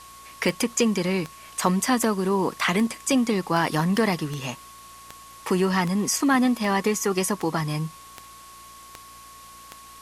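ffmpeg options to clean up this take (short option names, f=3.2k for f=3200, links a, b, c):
-af "adeclick=t=4,bandreject=f=58:t=h:w=4,bandreject=f=116:t=h:w=4,bandreject=f=174:t=h:w=4,bandreject=f=232:t=h:w=4,bandreject=f=290:t=h:w=4,bandreject=f=348:t=h:w=4,bandreject=f=1.1k:w=30,afwtdn=0.0045"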